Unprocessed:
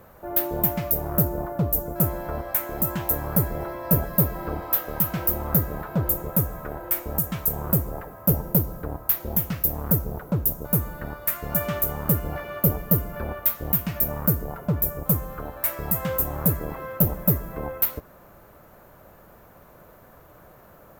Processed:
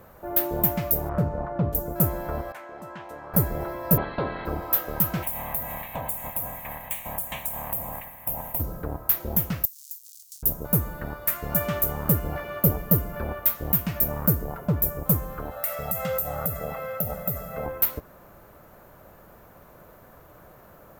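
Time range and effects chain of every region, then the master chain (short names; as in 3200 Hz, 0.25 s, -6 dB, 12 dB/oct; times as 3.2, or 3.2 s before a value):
1.09–1.75 LPF 2800 Hz + notches 50/100/150/200/250/300/350/400/450 Hz + mismatched tape noise reduction encoder only
2.52–3.34 HPF 1000 Hz 6 dB/oct + tape spacing loss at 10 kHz 27 dB
3.96–4.45 spectral limiter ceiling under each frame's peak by 20 dB + Chebyshev low-pass 4200 Hz, order 6
5.22–8.59 spectral limiter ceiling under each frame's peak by 23 dB + compressor 3:1, threshold -25 dBFS + fixed phaser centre 1400 Hz, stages 6
9.65–10.43 half-waves squared off + inverse Chebyshev high-pass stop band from 1400 Hz, stop band 70 dB + compressor 3:1, threshold -38 dBFS
15.51–17.66 HPF 220 Hz 6 dB/oct + comb 1.5 ms, depth 91% + compressor 4:1, threshold -23 dBFS
whole clip: dry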